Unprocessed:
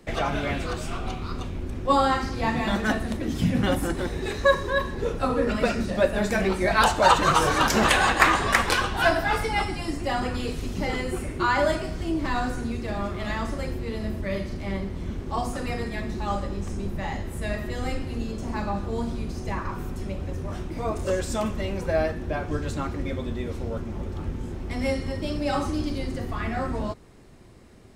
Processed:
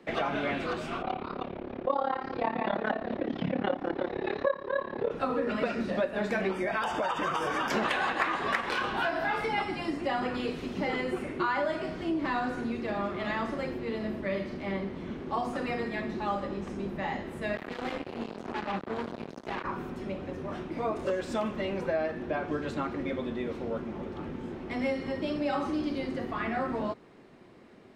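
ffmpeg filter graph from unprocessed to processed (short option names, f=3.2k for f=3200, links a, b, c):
-filter_complex "[0:a]asettb=1/sr,asplit=3[a][b][c];[a]atrim=end=1.024[d];[b]atrim=start=1.02:end=5.11,asetpts=PTS-STARTPTS,afade=t=in:d=0.004:c=qsin,afade=t=out:st=4.086:d=0.004:c=qsin,equalizer=f=650:t=o:w=1.5:g=9.5,tremolo=f=35:d=0.919,lowpass=f=4.5k:w=0.5412,lowpass=f=4.5k:w=1.3066[e];[c]atrim=start=5.106[f];[d][e]acrossfade=d=0.004:c1=hsin:c2=qsin[g];[g][f]acrossfade=d=0.004:c1=qsin:c2=hsin,asettb=1/sr,asplit=3[h][i][j];[h]atrim=end=6.514[k];[i]atrim=start=6.51:end=7.71,asetpts=PTS-STARTPTS,afade=t=in:d=0.004:c=qsin,afade=t=out:st=1.196:d=0.004:c=qsin,highshelf=f=6.9k:g=6,acompressor=threshold=-23dB:ratio=6:attack=3.2:release=140:knee=1:detection=peak,asuperstop=centerf=4100:order=8:qfactor=5.7[l];[j]atrim=start=7.706[m];[k][l]acrossfade=d=0.004:c1=hsin:c2=qsin[n];[n][m]acrossfade=d=0.004:c1=qsin:c2=hsin,asettb=1/sr,asplit=3[o][p][q];[o]atrim=end=8.604[r];[p]atrim=start=8.6:end=9.58,asetpts=PTS-STARTPTS,afade=t=in:d=0.004:c=qsin,afade=t=out:st=0.976:d=0.004:c=qsin,acompressor=threshold=-24dB:ratio=2:attack=3.2:release=140:knee=1:detection=peak,aeval=exprs='sgn(val(0))*max(abs(val(0))-0.00178,0)':c=same,asplit=2[s][t];[t]adelay=31,volume=-5dB[u];[s][u]amix=inputs=2:normalize=0,atrim=end_sample=43218[v];[q]atrim=start=9.576[w];[r][v]acrossfade=d=0.004:c1=hsin:c2=qsin[x];[x][w]acrossfade=d=0.004:c1=qsin:c2=hsin,asettb=1/sr,asplit=3[y][z][aa];[y]atrim=end=17.564[ab];[z]atrim=start=17.56:end=19.64,asetpts=PTS-STARTPTS,afade=t=in:d=0.004:c=qsin,afade=t=out:st=2.076:d=0.004:c=qsin,flanger=delay=2.4:depth=8.3:regen=45:speed=1:shape=sinusoidal,acrusher=bits=4:mix=0:aa=0.5[ac];[aa]atrim=start=19.636[ad];[ab][ac]acrossfade=d=0.004:c1=hsin:c2=qsin[ae];[ae][ad]acrossfade=d=0.004:c1=qsin:c2=hsin,acrossover=split=160 4000:gain=0.1 1 0.158[af][ag][ah];[af][ag][ah]amix=inputs=3:normalize=0,acompressor=threshold=-26dB:ratio=5"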